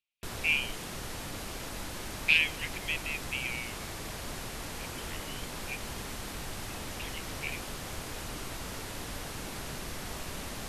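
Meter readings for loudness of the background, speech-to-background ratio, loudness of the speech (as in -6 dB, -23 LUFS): -39.5 LUFS, 8.5 dB, -31.0 LUFS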